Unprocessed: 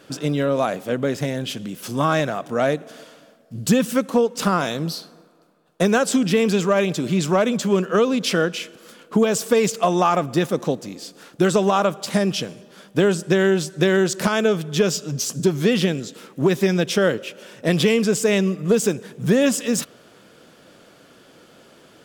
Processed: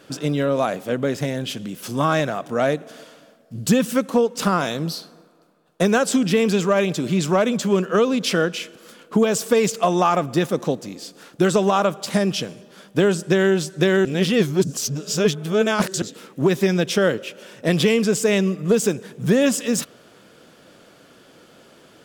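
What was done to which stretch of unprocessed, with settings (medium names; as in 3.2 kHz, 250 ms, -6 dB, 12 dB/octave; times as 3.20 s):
14.05–16.02 s: reverse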